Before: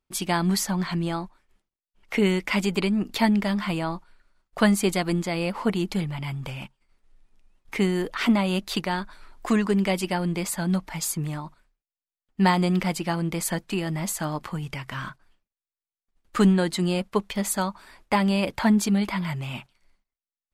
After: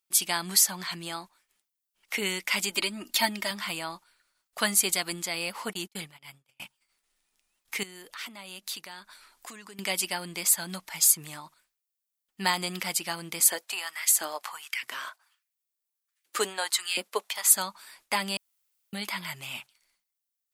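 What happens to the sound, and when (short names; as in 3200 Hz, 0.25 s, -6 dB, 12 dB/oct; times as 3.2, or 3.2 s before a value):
2.7–3.51 comb 3.2 ms, depth 67%
5.73–6.6 gate -30 dBFS, range -39 dB
7.83–9.79 compressor 3:1, threshold -38 dBFS
13.4–17.54 LFO high-pass saw up 1.4 Hz 270–2200 Hz
18.37–18.93 room tone
whole clip: tilt +4.5 dB/oct; gain -5.5 dB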